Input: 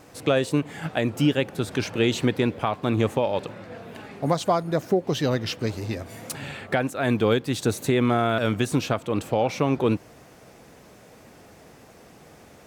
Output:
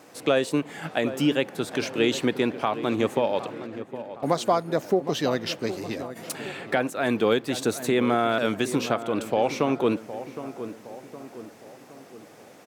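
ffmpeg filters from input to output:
-filter_complex "[0:a]highpass=210,asplit=3[s0][s1][s2];[s0]afade=t=out:st=3.66:d=0.02[s3];[s1]agate=range=0.158:threshold=0.0126:ratio=16:detection=peak,afade=t=in:st=3.66:d=0.02,afade=t=out:st=6.15:d=0.02[s4];[s2]afade=t=in:st=6.15:d=0.02[s5];[s3][s4][s5]amix=inputs=3:normalize=0,asplit=2[s6][s7];[s7]adelay=764,lowpass=f=1600:p=1,volume=0.251,asplit=2[s8][s9];[s9]adelay=764,lowpass=f=1600:p=1,volume=0.52,asplit=2[s10][s11];[s11]adelay=764,lowpass=f=1600:p=1,volume=0.52,asplit=2[s12][s13];[s13]adelay=764,lowpass=f=1600:p=1,volume=0.52,asplit=2[s14][s15];[s15]adelay=764,lowpass=f=1600:p=1,volume=0.52[s16];[s6][s8][s10][s12][s14][s16]amix=inputs=6:normalize=0"

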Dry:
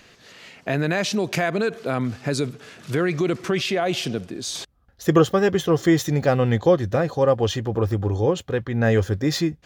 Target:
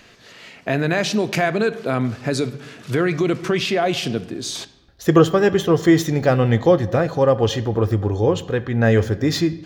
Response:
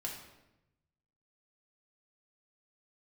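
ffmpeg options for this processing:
-filter_complex "[0:a]asplit=2[s0][s1];[1:a]atrim=start_sample=2205,lowpass=6100[s2];[s1][s2]afir=irnorm=-1:irlink=0,volume=0.355[s3];[s0][s3]amix=inputs=2:normalize=0,volume=1.12"

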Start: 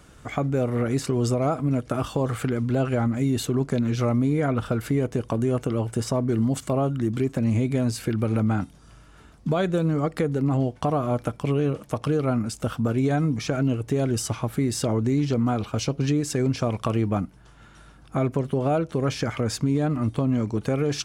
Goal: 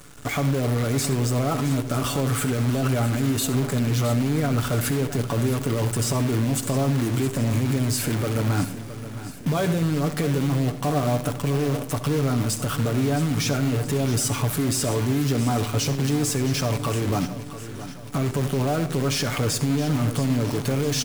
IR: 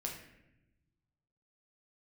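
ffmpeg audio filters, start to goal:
-filter_complex "[0:a]highshelf=f=7500:g=11,aecho=1:1:7:0.57,alimiter=limit=0.0841:level=0:latency=1:release=38,asoftclip=type=tanh:threshold=0.1,acrusher=bits=7:dc=4:mix=0:aa=0.000001,aecho=1:1:667|1334|2001|2668|3335:0.224|0.114|0.0582|0.0297|0.0151,asplit=2[s0][s1];[1:a]atrim=start_sample=2205,asetrate=66150,aresample=44100,adelay=66[s2];[s1][s2]afir=irnorm=-1:irlink=0,volume=0.355[s3];[s0][s3]amix=inputs=2:normalize=0,volume=2"

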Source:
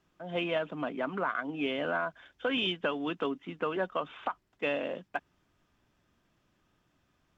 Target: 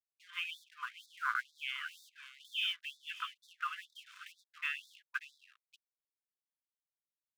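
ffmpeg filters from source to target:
-af "highshelf=f=2600:g=-9,bandreject=f=1100:w=9.2,aecho=1:1:584:0.188,aeval=exprs='sgn(val(0))*max(abs(val(0))-0.002,0)':c=same,afftfilt=real='re*gte(b*sr/1024,950*pow(3500/950,0.5+0.5*sin(2*PI*2.1*pts/sr)))':imag='im*gte(b*sr/1024,950*pow(3500/950,0.5+0.5*sin(2*PI*2.1*pts/sr)))':win_size=1024:overlap=0.75,volume=1.5"

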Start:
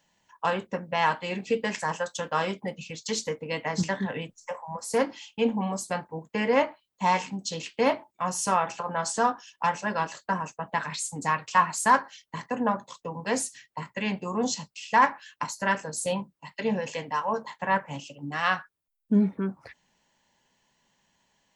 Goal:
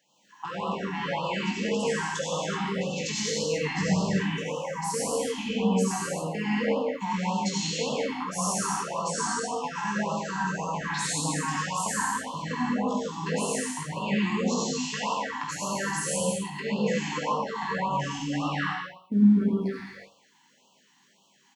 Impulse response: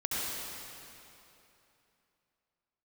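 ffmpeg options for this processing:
-filter_complex "[0:a]acrossover=split=160[s0][s1];[s0]aeval=exprs='sgn(val(0))*max(abs(val(0))-0.002,0)':c=same[s2];[s1]acompressor=threshold=0.0251:ratio=6[s3];[s2][s3]amix=inputs=2:normalize=0,aecho=1:1:20|48|87.2|142.1|218.9:0.631|0.398|0.251|0.158|0.1[s4];[1:a]atrim=start_sample=2205,afade=t=out:st=0.43:d=0.01,atrim=end_sample=19404[s5];[s4][s5]afir=irnorm=-1:irlink=0,afftfilt=real='re*(1-between(b*sr/1024,490*pow(1900/490,0.5+0.5*sin(2*PI*1.8*pts/sr))/1.41,490*pow(1900/490,0.5+0.5*sin(2*PI*1.8*pts/sr))*1.41))':imag='im*(1-between(b*sr/1024,490*pow(1900/490,0.5+0.5*sin(2*PI*1.8*pts/sr))/1.41,490*pow(1900/490,0.5+0.5*sin(2*PI*1.8*pts/sr))*1.41))':win_size=1024:overlap=0.75"

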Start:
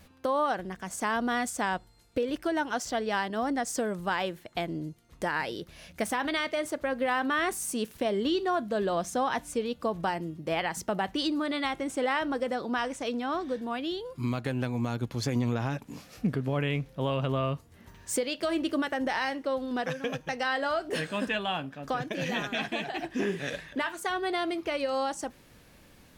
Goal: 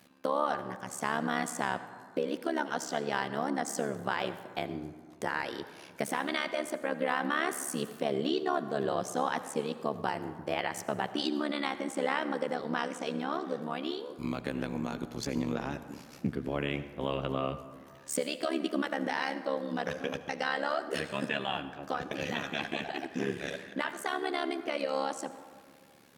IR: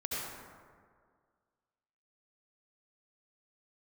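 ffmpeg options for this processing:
-filter_complex "[0:a]highpass=f=160:w=0.5412,highpass=f=160:w=1.3066,tremolo=f=71:d=0.947,asplit=2[s0][s1];[1:a]atrim=start_sample=2205[s2];[s1][s2]afir=irnorm=-1:irlink=0,volume=0.188[s3];[s0][s3]amix=inputs=2:normalize=0"

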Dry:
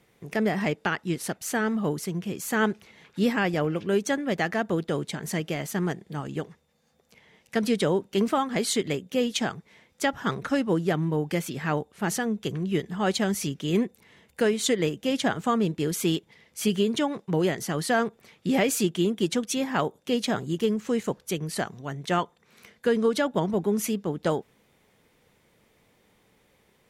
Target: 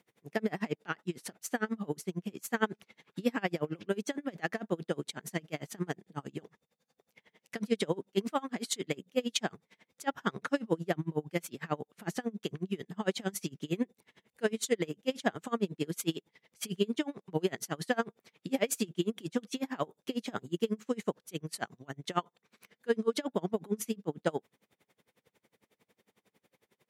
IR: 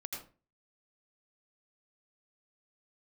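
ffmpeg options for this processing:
-af "highpass=140,aeval=exprs='val(0)*pow(10,-30*(0.5-0.5*cos(2*PI*11*n/s))/20)':c=same,volume=0.841"

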